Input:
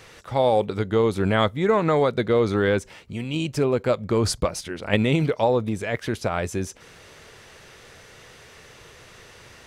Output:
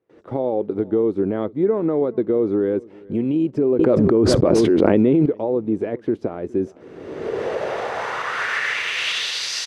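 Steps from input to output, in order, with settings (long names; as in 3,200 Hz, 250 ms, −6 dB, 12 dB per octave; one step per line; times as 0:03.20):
camcorder AGC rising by 30 dB per second
noise gate with hold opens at −34 dBFS
in parallel at −11 dB: centre clipping without the shift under −28.5 dBFS
on the sum: band-pass filter sweep 330 Hz → 4,900 Hz, 0:07.15–0:09.52
on a send: single-tap delay 413 ms −23 dB
0:03.79–0:05.26: on the sum: envelope flattener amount 100%
level +3.5 dB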